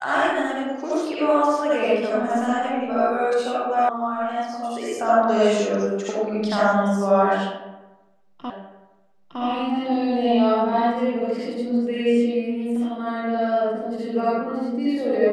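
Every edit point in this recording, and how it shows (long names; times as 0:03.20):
0:03.89: cut off before it has died away
0:08.50: the same again, the last 0.91 s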